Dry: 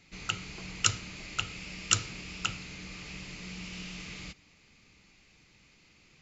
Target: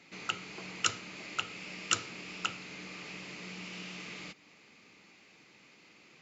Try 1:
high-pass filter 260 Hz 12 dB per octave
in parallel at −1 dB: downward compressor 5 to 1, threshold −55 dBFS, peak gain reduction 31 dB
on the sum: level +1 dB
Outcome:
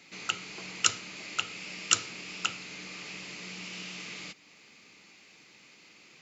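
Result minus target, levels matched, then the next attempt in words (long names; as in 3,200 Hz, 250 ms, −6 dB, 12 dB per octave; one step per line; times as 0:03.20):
8,000 Hz band +2.5 dB
high-pass filter 260 Hz 12 dB per octave
high-shelf EQ 3,000 Hz −8.5 dB
in parallel at −1 dB: downward compressor 5 to 1, threshold −55 dBFS, peak gain reduction 27 dB
on the sum: level +1 dB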